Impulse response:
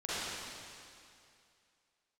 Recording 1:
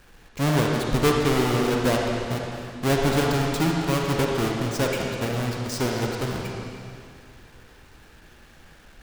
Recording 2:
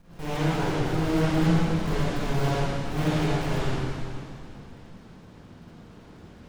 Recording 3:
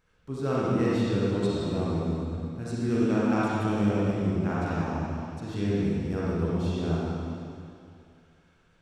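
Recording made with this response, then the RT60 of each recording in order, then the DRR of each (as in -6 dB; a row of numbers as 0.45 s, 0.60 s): 2; 2.5 s, 2.5 s, 2.5 s; -1.0 dB, -12.0 dB, -8.0 dB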